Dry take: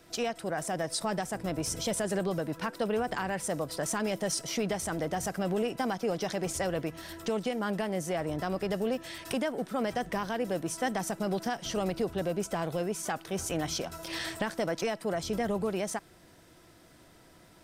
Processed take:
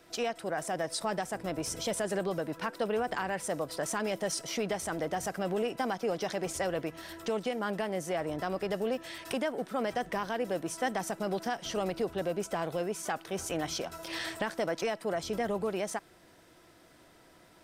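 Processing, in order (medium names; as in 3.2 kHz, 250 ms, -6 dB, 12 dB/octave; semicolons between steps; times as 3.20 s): tone controls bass -6 dB, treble -3 dB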